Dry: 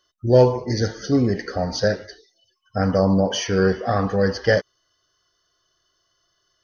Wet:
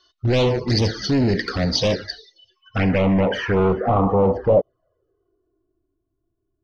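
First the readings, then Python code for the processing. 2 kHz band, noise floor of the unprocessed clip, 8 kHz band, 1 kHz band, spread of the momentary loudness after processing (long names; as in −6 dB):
0.0 dB, −70 dBFS, can't be measured, +2.0 dB, 8 LU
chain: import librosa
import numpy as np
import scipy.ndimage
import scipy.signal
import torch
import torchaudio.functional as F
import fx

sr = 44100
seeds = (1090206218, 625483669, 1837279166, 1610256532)

y = np.clip(10.0 ** (22.5 / 20.0) * x, -1.0, 1.0) / 10.0 ** (22.5 / 20.0)
y = fx.filter_sweep_lowpass(y, sr, from_hz=4200.0, to_hz=240.0, start_s=2.18, end_s=5.99, q=2.5)
y = fx.env_flanger(y, sr, rest_ms=2.8, full_db=-21.0)
y = y * librosa.db_to_amplitude(7.5)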